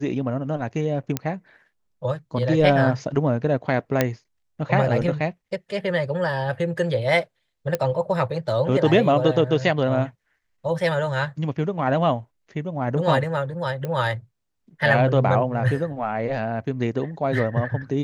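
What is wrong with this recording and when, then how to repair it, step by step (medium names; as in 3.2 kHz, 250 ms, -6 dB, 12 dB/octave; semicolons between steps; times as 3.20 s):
1.17 s: pop -8 dBFS
4.01 s: pop -4 dBFS
7.75 s: pop -10 dBFS
13.85 s: pop -17 dBFS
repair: de-click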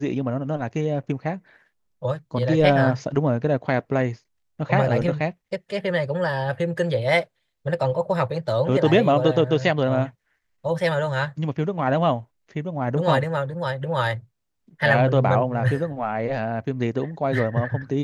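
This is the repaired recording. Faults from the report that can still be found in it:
7.75 s: pop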